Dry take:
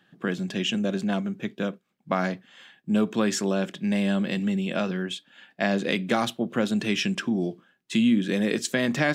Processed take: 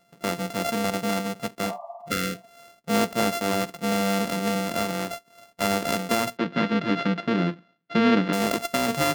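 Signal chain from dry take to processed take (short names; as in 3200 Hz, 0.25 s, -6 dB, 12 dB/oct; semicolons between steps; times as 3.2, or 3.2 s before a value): sample sorter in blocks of 64 samples; 1.68–2.47 spectral repair 580–1200 Hz both; 6.37–8.33 speaker cabinet 120–4000 Hz, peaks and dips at 170 Hz +9 dB, 300 Hz +7 dB, 740 Hz -7 dB, 1600 Hz +4 dB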